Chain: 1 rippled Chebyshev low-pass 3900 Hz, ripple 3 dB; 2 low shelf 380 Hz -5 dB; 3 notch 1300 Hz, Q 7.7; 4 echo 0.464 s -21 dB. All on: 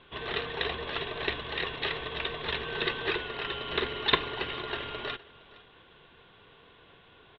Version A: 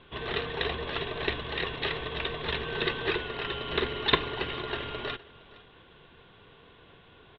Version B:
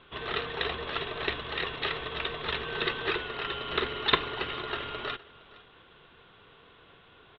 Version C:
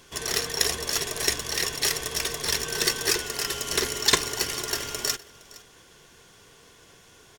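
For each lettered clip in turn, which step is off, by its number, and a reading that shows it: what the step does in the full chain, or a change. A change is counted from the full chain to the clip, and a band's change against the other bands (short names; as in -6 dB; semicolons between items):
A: 2, 125 Hz band +4.0 dB; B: 3, 1 kHz band +1.5 dB; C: 1, 4 kHz band +4.5 dB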